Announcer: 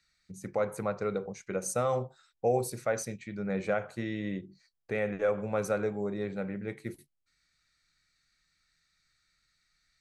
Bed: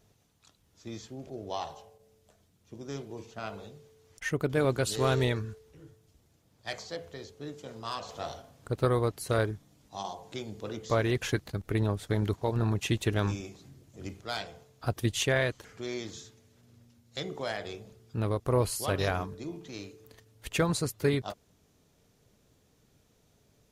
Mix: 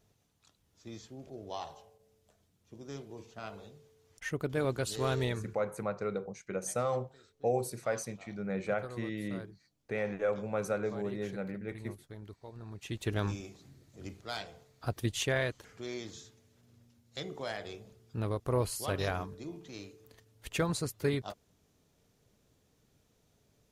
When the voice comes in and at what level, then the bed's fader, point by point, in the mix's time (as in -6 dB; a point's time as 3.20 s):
5.00 s, -3.0 dB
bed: 5.44 s -5 dB
5.84 s -19 dB
12.66 s -19 dB
13.12 s -4 dB